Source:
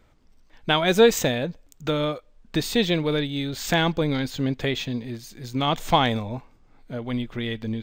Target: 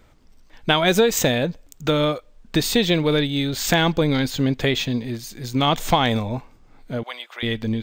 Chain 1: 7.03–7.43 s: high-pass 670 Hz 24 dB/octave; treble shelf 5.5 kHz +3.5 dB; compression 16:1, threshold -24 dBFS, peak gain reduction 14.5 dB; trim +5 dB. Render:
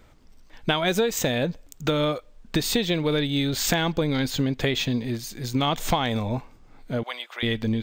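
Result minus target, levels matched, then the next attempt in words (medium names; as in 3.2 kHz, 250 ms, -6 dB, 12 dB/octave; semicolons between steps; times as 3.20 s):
compression: peak gain reduction +6 dB
7.03–7.43 s: high-pass 670 Hz 24 dB/octave; treble shelf 5.5 kHz +3.5 dB; compression 16:1, threshold -17.5 dBFS, peak gain reduction 8.5 dB; trim +5 dB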